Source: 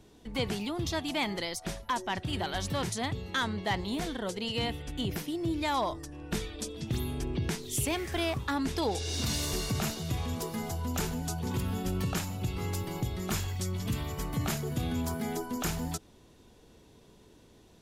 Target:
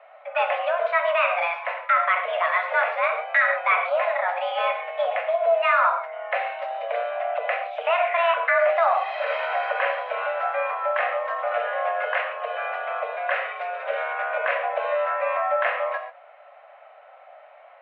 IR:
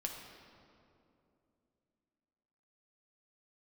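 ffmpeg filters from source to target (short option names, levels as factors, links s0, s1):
-filter_complex "[0:a]highpass=f=260:t=q:w=0.5412,highpass=f=260:t=q:w=1.307,lowpass=f=2100:t=q:w=0.5176,lowpass=f=2100:t=q:w=0.7071,lowpass=f=2100:t=q:w=1.932,afreqshift=340,equalizer=f=900:t=o:w=0.62:g=-9[s0];[1:a]atrim=start_sample=2205,afade=t=out:st=0.17:d=0.01,atrim=end_sample=7938,asetrate=37926,aresample=44100[s1];[s0][s1]afir=irnorm=-1:irlink=0,alimiter=level_in=17.8:limit=0.891:release=50:level=0:latency=1,volume=0.376"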